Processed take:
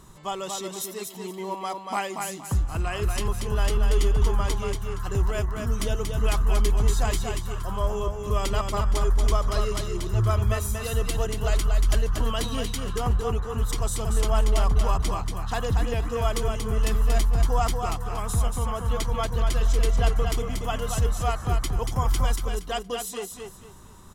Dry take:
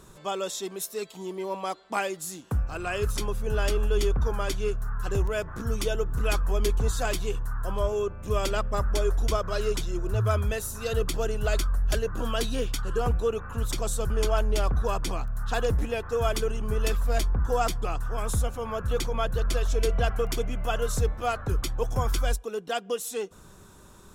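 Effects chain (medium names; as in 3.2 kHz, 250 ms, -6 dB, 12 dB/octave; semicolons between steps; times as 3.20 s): comb 1 ms, depth 40%; on a send: feedback delay 234 ms, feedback 27%, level -5 dB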